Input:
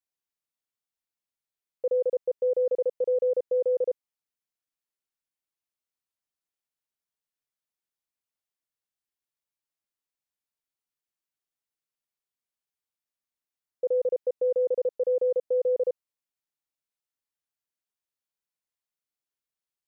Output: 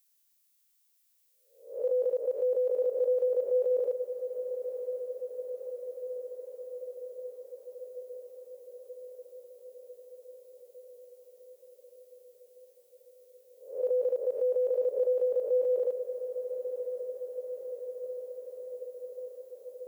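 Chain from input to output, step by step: reverse spectral sustain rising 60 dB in 0.49 s; tilt EQ +5 dB/octave; on a send: echo that smears into a reverb 1052 ms, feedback 73%, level -9 dB; on the sum: trim +2 dB

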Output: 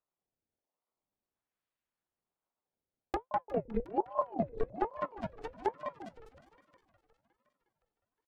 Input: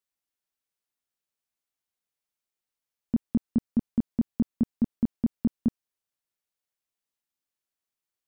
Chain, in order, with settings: 4.89–5.61 s: tilt EQ +3.5 dB/octave; decimation with a swept rate 33×, swing 160% 0.44 Hz; 3.30–3.90 s: LPC vocoder at 8 kHz pitch kept; flange 1.5 Hz, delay 5.3 ms, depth 2.1 ms, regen -67%; feedback delay 201 ms, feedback 31%, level -7 dB; low-pass that closes with the level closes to 730 Hz, closed at -28 dBFS; two-band feedback delay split 320 Hz, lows 171 ms, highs 360 ms, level -12.5 dB; ring modulator with a swept carrier 520 Hz, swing 60%, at 1.2 Hz

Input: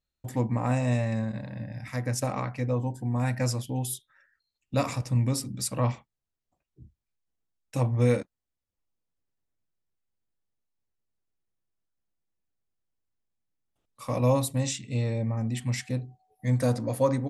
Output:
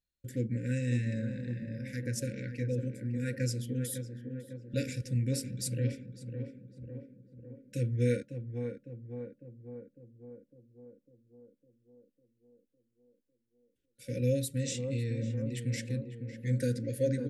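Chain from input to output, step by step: FFT band-reject 560–1400 Hz; tape echo 553 ms, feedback 74%, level -5.5 dB, low-pass 1.1 kHz; trim -5.5 dB

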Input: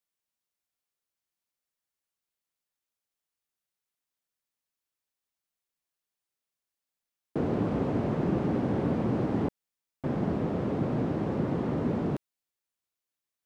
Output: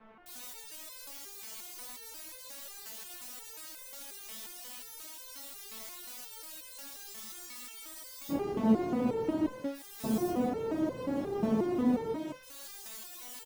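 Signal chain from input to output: jump at every zero crossing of -40.5 dBFS; in parallel at +2.5 dB: compression, threshold -37 dBFS, peak gain reduction 13.5 dB; on the sum: bands offset in time lows, highs 260 ms, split 1.7 kHz; on a send at -7.5 dB: reverberation RT60 0.25 s, pre-delay 153 ms; on the sum: spectral freeze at 7.15 s, 1.14 s; resonator arpeggio 5.6 Hz 220–510 Hz; trim +9 dB

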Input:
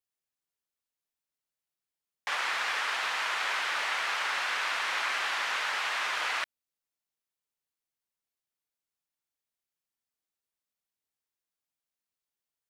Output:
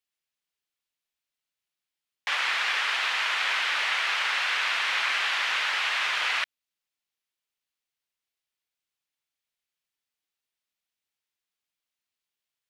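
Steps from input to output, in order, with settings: peaking EQ 2.9 kHz +8.5 dB 1.9 oct; trim -1.5 dB

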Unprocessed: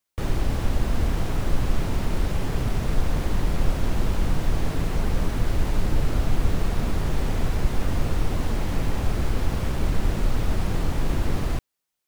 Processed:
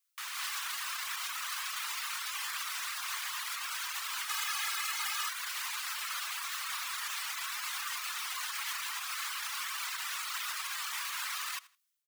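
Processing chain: flange 0.51 Hz, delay 5.7 ms, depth 8.8 ms, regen +78%; level rider gain up to 16.5 dB; Chebyshev high-pass 1.1 kHz, order 4; tilt EQ +2 dB/octave; feedback delay 81 ms, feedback 24%, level -17 dB; peak limiter -25.5 dBFS, peak gain reduction 9.5 dB; 4.29–5.29 s: comb 2.4 ms, depth 93%; reverb removal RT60 0.97 s

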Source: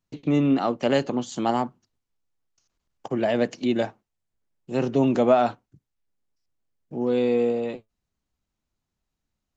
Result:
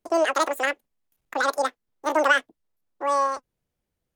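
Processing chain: wide varispeed 2.3×

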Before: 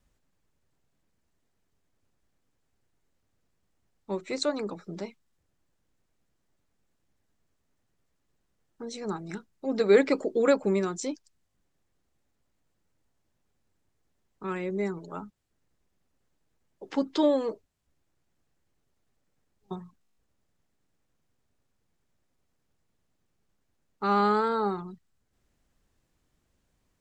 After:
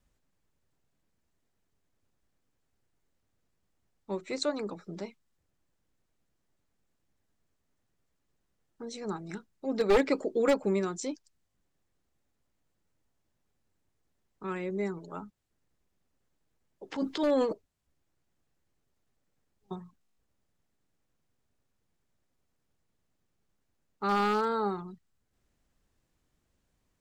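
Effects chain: one-sided wavefolder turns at -16.5 dBFS; 16.92–17.53 s: transient shaper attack -7 dB, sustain +10 dB; trim -2.5 dB

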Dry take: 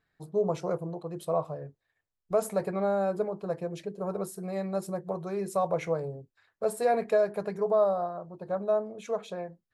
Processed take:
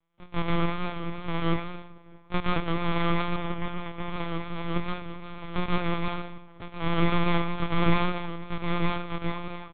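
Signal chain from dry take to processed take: sorted samples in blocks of 256 samples; high-pass 170 Hz 6 dB/octave; comb 6.7 ms, depth 53%; wow and flutter 48 cents; 6.08–6.81 s: compression 5:1, threshold -36 dBFS, peak gain reduction 12.5 dB; tape echo 632 ms, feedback 66%, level -23 dB, low-pass 1.7 kHz; 4.88–5.44 s: level held to a coarse grid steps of 20 dB; reverberation RT60 0.55 s, pre-delay 113 ms, DRR -3.5 dB; LPC vocoder at 8 kHz pitch kept; 3.36–4.10 s: loudspeaker Doppler distortion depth 0.13 ms

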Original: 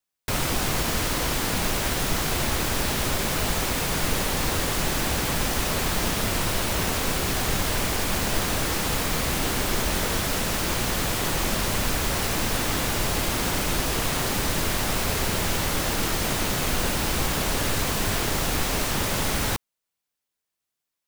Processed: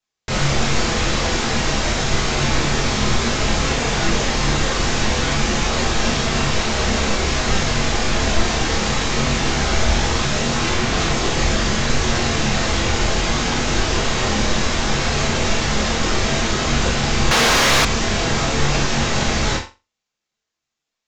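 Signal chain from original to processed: chorus voices 4, 0.34 Hz, delay 26 ms, depth 4.2 ms; resampled via 16 kHz; on a send: flutter echo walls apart 7.3 m, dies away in 0.26 s; on the sum: gated-style reverb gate 120 ms falling, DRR 4.5 dB; 17.31–17.85 s: overdrive pedal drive 23 dB, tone 5.6 kHz, clips at -15 dBFS; trim +7.5 dB

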